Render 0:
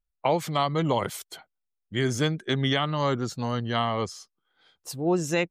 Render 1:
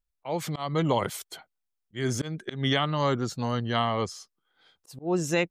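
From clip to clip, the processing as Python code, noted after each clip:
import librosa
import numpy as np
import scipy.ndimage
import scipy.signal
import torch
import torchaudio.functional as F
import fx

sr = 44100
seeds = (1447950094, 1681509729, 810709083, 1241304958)

y = fx.auto_swell(x, sr, attack_ms=182.0)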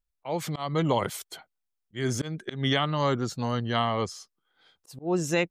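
y = x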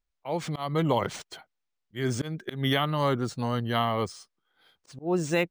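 y = np.interp(np.arange(len(x)), np.arange(len(x))[::3], x[::3])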